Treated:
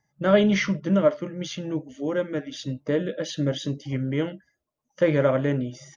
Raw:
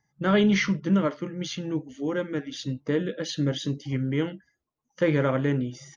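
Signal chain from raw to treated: bell 600 Hz +11 dB 0.27 oct; notch 4200 Hz, Q 18

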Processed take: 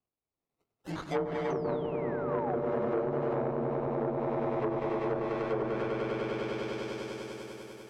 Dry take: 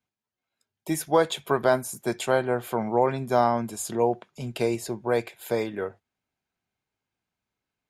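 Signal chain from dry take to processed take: inharmonic rescaling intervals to 90%; 3.86–4.49 tilt +3 dB/oct; decimation with a swept rate 23×, swing 60% 0.68 Hz; on a send: swelling echo 99 ms, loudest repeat 5, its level -5 dB; 1.5–2.55 on the sum: painted sound fall 690–6300 Hz -21 dBFS; in parallel at -2 dB: compressor 6:1, threshold -28 dBFS, peak gain reduction 14 dB; on the sum: treble ducked by the level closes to 540 Hz, closed at -14 dBFS; core saturation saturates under 760 Hz; gain -8.5 dB

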